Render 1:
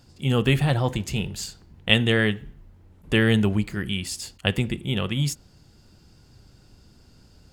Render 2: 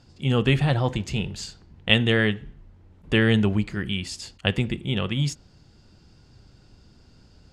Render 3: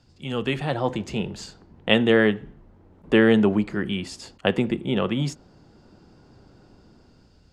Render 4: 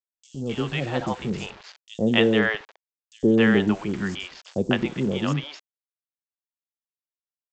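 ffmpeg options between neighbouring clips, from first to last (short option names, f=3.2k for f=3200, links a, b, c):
-af "lowpass=6.3k"
-filter_complex "[0:a]acrossover=split=190|1400[a][b][c];[a]asoftclip=type=tanh:threshold=-34dB[d];[b]dynaudnorm=f=330:g=5:m=12dB[e];[d][e][c]amix=inputs=3:normalize=0,volume=-4dB"
-filter_complex "[0:a]aresample=16000,aeval=exprs='val(0)*gte(abs(val(0)),0.0158)':c=same,aresample=44100,acrossover=split=580|5300[a][b][c];[a]adelay=110[d];[b]adelay=260[e];[d][e][c]amix=inputs=3:normalize=0"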